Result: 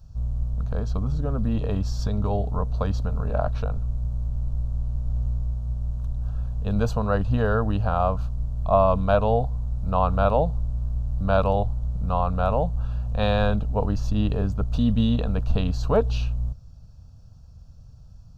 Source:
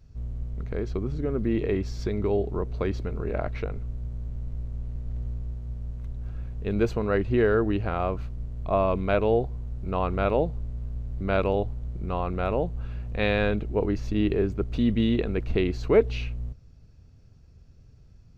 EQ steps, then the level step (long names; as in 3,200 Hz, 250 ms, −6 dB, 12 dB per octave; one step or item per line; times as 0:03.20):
phaser with its sweep stopped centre 870 Hz, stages 4
+7.0 dB